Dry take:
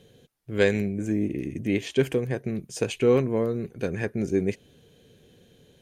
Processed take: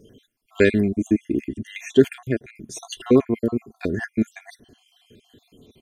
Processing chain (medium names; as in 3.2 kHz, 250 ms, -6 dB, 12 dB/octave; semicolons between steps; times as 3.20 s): random holes in the spectrogram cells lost 57%; comb 2.9 ms, depth 53%; small resonant body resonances 220/3400 Hz, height 9 dB, ringing for 30 ms; trim +3.5 dB